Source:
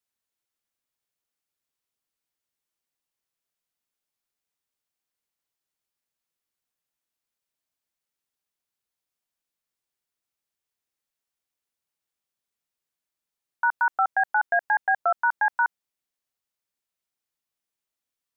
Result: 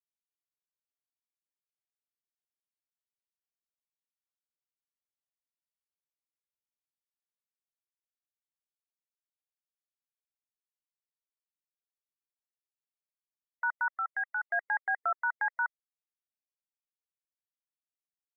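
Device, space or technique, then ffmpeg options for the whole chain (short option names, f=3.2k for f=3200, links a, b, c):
laptop speaker: -filter_complex "[0:a]highpass=f=330:w=0.5412,highpass=f=330:w=1.3066,equalizer=f=1.3k:t=o:w=0.56:g=9,equalizer=f=1.9k:t=o:w=0.21:g=10.5,alimiter=limit=-18.5dB:level=0:latency=1:release=11,asplit=3[a][b][c];[a]afade=t=out:st=13.88:d=0.02[d];[b]highpass=1.3k,afade=t=in:st=13.88:d=0.02,afade=t=out:st=14.51:d=0.02[e];[c]afade=t=in:st=14.51:d=0.02[f];[d][e][f]amix=inputs=3:normalize=0,afftfilt=real='re*gte(hypot(re,im),0.00355)':imag='im*gte(hypot(re,im),0.00355)':win_size=1024:overlap=0.75,volume=-4dB"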